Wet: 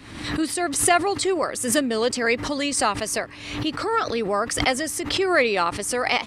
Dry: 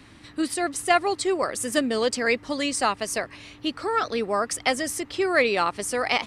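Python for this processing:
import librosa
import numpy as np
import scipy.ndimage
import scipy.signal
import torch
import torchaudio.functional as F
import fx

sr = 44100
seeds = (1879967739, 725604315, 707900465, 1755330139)

y = fx.pre_swell(x, sr, db_per_s=63.0)
y = y * librosa.db_to_amplitude(1.0)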